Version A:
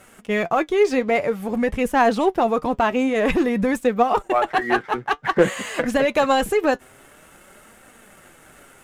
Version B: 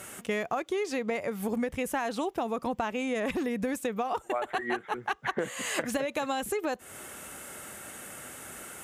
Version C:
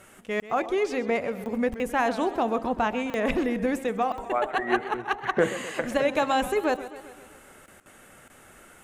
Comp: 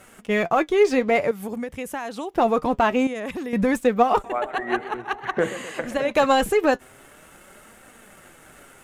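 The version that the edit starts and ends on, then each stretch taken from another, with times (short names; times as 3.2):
A
1.31–2.34 from B
3.07–3.53 from B
4.24–6.11 from C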